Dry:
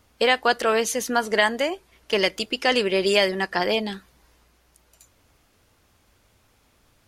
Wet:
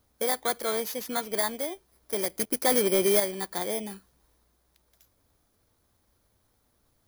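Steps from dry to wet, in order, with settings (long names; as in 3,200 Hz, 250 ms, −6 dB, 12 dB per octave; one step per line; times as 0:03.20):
samples in bit-reversed order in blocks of 16 samples
0:02.39–0:03.20: leveller curve on the samples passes 2
level −8 dB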